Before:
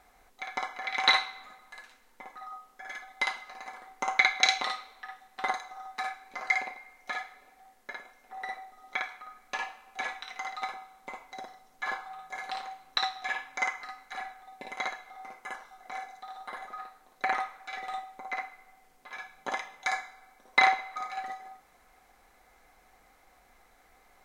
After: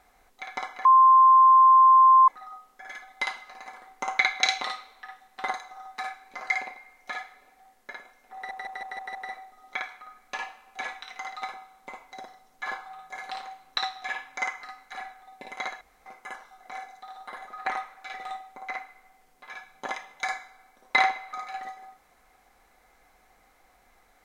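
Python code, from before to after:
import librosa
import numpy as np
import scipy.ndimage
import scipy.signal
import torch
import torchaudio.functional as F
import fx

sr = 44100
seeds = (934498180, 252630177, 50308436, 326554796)

y = fx.edit(x, sr, fx.bleep(start_s=0.85, length_s=1.43, hz=1050.0, db=-12.0),
    fx.stutter(start_s=8.35, slice_s=0.16, count=6),
    fx.room_tone_fill(start_s=15.01, length_s=0.25),
    fx.cut(start_s=16.86, length_s=0.43), tone=tone)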